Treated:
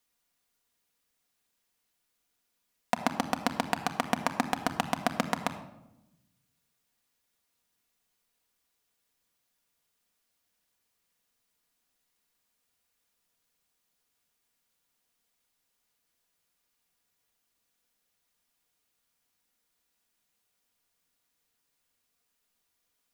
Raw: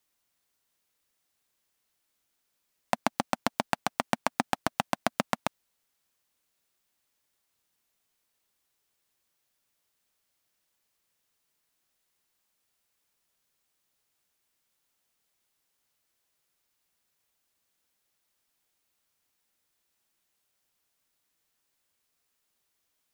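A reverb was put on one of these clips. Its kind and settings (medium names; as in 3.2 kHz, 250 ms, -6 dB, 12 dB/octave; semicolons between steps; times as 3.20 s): simulated room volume 3400 m³, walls furnished, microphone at 1.8 m; trim -1.5 dB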